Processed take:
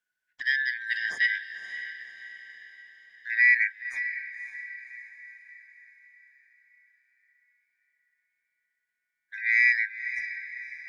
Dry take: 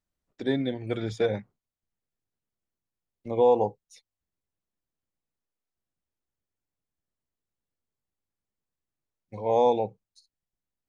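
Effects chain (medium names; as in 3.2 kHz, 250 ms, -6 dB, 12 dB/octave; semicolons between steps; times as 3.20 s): four frequency bands reordered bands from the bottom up 4123; echo that smears into a reverb 552 ms, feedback 48%, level -11 dB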